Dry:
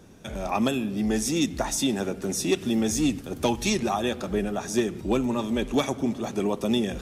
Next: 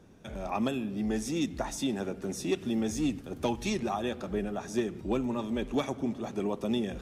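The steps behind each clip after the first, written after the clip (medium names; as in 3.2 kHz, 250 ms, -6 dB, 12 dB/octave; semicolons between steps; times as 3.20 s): treble shelf 4 kHz -7.5 dB; trim -5.5 dB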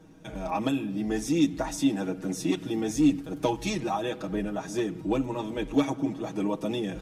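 comb 6.3 ms, depth 91%; small resonant body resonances 280/890 Hz, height 8 dB, ringing for 90 ms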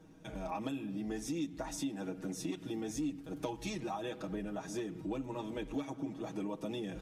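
compression 3:1, threshold -31 dBFS, peak gain reduction 11 dB; trim -5.5 dB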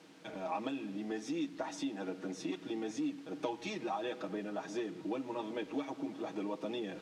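word length cut 10-bit, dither triangular; band-pass 270–4400 Hz; trim +2.5 dB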